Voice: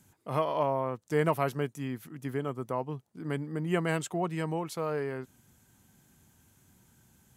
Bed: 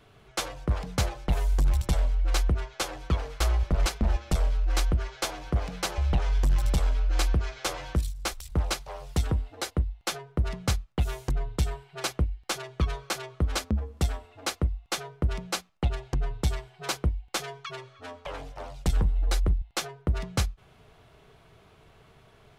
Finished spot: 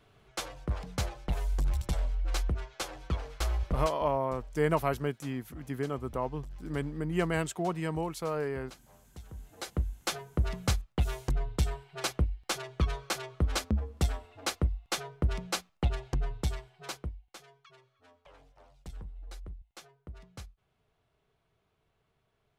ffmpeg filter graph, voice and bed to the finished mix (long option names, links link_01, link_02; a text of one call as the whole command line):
ffmpeg -i stem1.wav -i stem2.wav -filter_complex "[0:a]adelay=3450,volume=-0.5dB[link_01];[1:a]volume=14dB,afade=type=out:start_time=3.76:duration=0.2:silence=0.158489,afade=type=in:start_time=9.31:duration=0.66:silence=0.1,afade=type=out:start_time=16.03:duration=1.33:silence=0.133352[link_02];[link_01][link_02]amix=inputs=2:normalize=0" out.wav